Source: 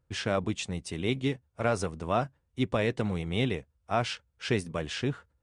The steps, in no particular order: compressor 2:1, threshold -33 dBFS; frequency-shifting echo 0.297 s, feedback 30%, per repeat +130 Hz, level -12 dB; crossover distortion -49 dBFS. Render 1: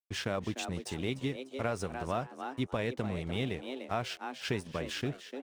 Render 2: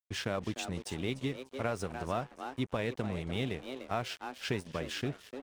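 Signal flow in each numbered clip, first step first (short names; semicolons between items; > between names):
crossover distortion > frequency-shifting echo > compressor; frequency-shifting echo > compressor > crossover distortion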